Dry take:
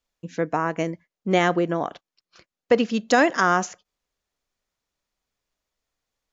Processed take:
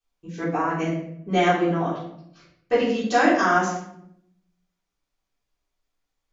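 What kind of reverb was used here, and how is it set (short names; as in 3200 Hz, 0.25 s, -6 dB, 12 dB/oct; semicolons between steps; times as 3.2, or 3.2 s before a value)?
shoebox room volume 150 m³, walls mixed, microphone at 3.6 m; gain -12.5 dB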